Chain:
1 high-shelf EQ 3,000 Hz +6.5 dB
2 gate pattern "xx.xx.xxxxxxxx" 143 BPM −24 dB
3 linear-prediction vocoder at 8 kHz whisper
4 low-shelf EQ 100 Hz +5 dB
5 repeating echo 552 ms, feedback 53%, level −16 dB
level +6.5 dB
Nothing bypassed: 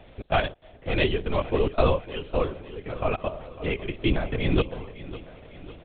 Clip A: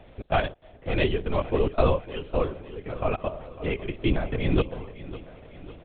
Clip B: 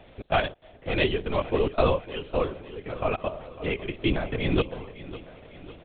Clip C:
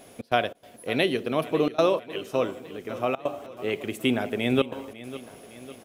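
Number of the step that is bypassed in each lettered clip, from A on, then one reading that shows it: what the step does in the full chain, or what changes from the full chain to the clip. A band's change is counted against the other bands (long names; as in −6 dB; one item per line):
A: 1, 4 kHz band −3.0 dB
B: 4, 125 Hz band −2.5 dB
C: 3, 125 Hz band −8.0 dB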